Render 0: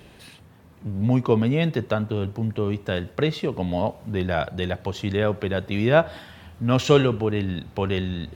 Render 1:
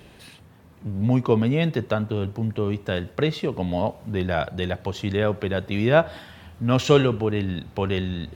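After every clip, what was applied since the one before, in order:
no processing that can be heard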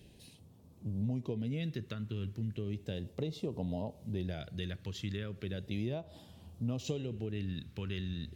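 downward compressor 12 to 1, threshold −22 dBFS, peak gain reduction 12.5 dB
all-pass phaser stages 2, 0.35 Hz, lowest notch 720–1,700 Hz
level −8.5 dB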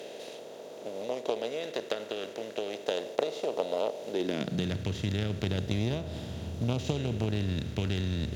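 compressor on every frequency bin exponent 0.4
harmonic generator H 3 −13 dB, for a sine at −16.5 dBFS
high-pass filter sweep 520 Hz → 76 Hz, 0:04.04–0:04.87
level +7 dB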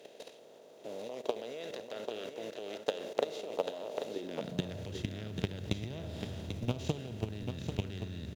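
output level in coarse steps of 14 dB
log-companded quantiser 8 bits
on a send: single-tap delay 791 ms −7 dB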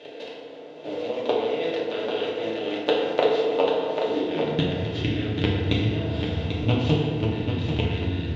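low-pass with resonance 3,200 Hz, resonance Q 1.7
feedback delay network reverb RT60 1.5 s, low-frequency decay 1.05×, high-frequency decay 0.5×, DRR −5 dB
level +6 dB

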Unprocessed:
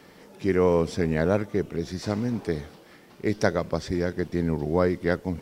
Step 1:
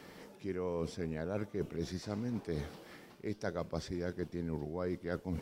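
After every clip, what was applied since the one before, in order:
dynamic equaliser 1,900 Hz, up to −5 dB, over −49 dBFS, Q 6.1
reversed playback
downward compressor 10 to 1, threshold −31 dBFS, peak gain reduction 16 dB
reversed playback
level −2 dB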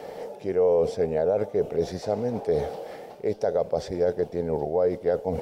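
flat-topped bell 600 Hz +15.5 dB 1.2 octaves
brickwall limiter −20 dBFS, peak gain reduction 7 dB
level +5.5 dB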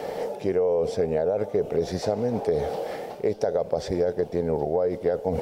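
downward compressor, threshold −27 dBFS, peak gain reduction 9 dB
level +6.5 dB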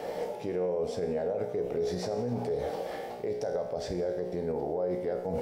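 tuned comb filter 60 Hz, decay 0.8 s, harmonics all, mix 80%
brickwall limiter −28 dBFS, peak gain reduction 7.5 dB
level +5 dB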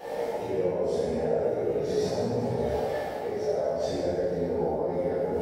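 random phases in long frames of 100 ms
dense smooth reverb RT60 1.7 s, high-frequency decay 0.7×, DRR −9.5 dB
level −5.5 dB

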